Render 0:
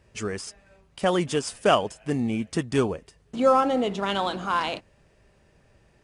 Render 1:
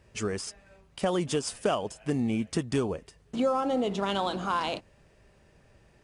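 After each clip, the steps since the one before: dynamic bell 1.9 kHz, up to -5 dB, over -39 dBFS, Q 1.2; compression 6:1, threshold -23 dBFS, peak gain reduction 8.5 dB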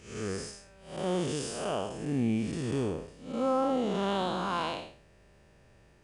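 spectral blur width 217 ms; trim +1.5 dB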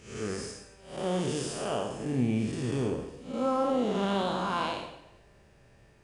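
plate-style reverb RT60 0.94 s, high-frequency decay 0.9×, DRR 5.5 dB

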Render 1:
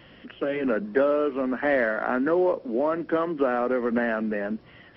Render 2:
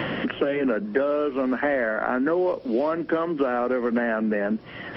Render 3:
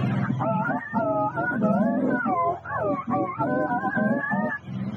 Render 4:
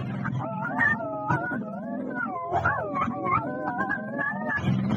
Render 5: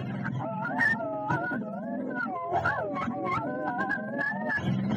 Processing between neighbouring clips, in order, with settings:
three bands compressed up and down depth 100%
spectrum inverted on a logarithmic axis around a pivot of 610 Hz; tone controls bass +6 dB, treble -4 dB
compressor with a negative ratio -35 dBFS, ratio -1; trim +6 dB
in parallel at -4.5 dB: saturation -26 dBFS, distortion -9 dB; on the sum: comb of notches 1.2 kHz; trim -4 dB

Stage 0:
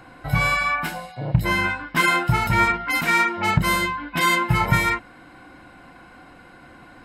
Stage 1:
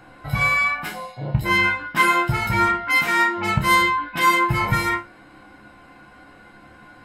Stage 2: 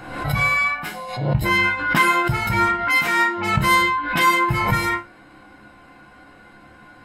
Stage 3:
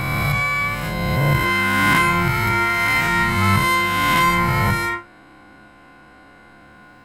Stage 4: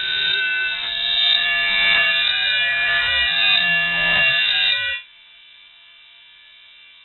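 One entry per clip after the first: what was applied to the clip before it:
chord resonator C#2 fifth, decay 0.24 s; trim +8 dB
swell ahead of each attack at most 61 dB/s
reverse spectral sustain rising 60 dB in 2.85 s; trim -3 dB
coarse spectral quantiser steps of 15 dB; frequency inversion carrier 3.8 kHz

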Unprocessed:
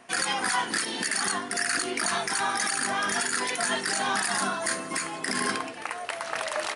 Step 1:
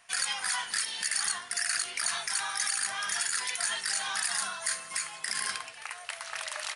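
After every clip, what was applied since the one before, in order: amplifier tone stack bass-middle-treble 10-0-10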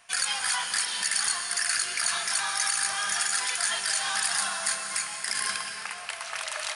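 band-stop 1.9 kHz, Q 21; on a send at -5 dB: reverberation RT60 2.6 s, pre-delay 90 ms; on the sum: trim +3 dB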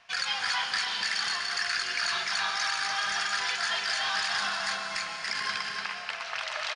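low-pass 5.3 kHz 24 dB/octave; delay 292 ms -5.5 dB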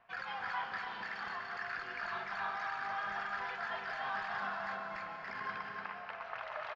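low-pass 1.2 kHz 12 dB/octave; trim -2.5 dB

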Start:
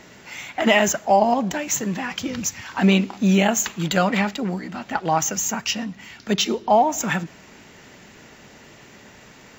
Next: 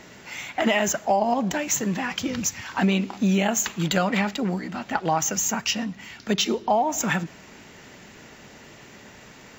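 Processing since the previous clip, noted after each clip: compression 4:1, threshold -18 dBFS, peak gain reduction 6.5 dB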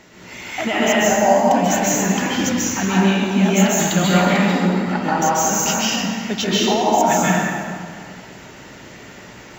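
plate-style reverb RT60 2.1 s, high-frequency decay 0.65×, pre-delay 120 ms, DRR -8 dB; trim -1.5 dB

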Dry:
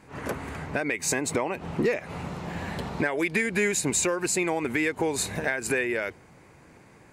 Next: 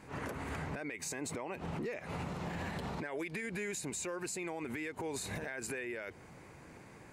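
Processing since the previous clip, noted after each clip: compression, threshold -32 dBFS, peak gain reduction 11.5 dB; peak limiter -30 dBFS, peak gain reduction 10 dB; trim -1 dB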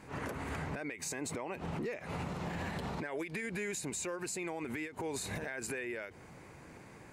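endings held to a fixed fall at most 160 dB/s; trim +1 dB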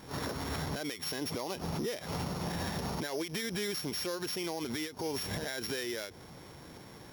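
sorted samples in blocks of 8 samples; attacks held to a fixed rise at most 330 dB/s; trim +3 dB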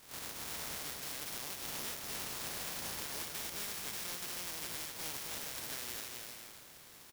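spectral contrast reduction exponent 0.21; on a send: bouncing-ball echo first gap 250 ms, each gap 0.65×, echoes 5; on the sum: trim -7.5 dB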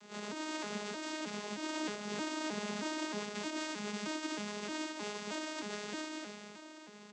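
vocoder on a broken chord bare fifth, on G#3, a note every 312 ms; trim +6 dB

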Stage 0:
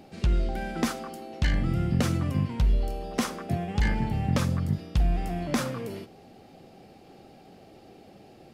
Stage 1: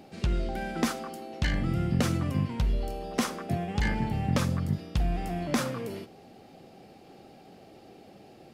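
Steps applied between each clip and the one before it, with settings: bass shelf 76 Hz -6.5 dB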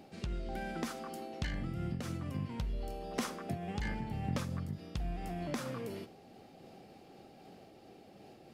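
compression 2.5:1, threshold -32 dBFS, peak gain reduction 7.5 dB; random flutter of the level, depth 55%; trim -1.5 dB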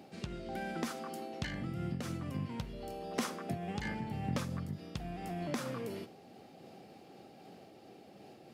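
high-pass 100 Hz 12 dB/octave; trim +1 dB

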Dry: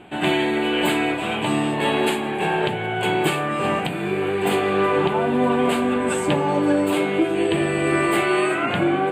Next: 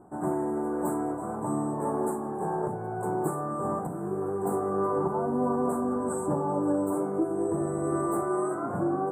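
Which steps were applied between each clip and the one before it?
elliptic band-stop 1.2–8.1 kHz, stop band 60 dB; trim -7 dB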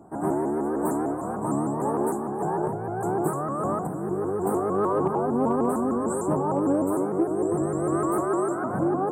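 Chebyshev shaper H 3 -27 dB, 5 -36 dB, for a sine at -16.5 dBFS; vibrato with a chosen wave saw up 6.6 Hz, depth 160 cents; trim +4 dB

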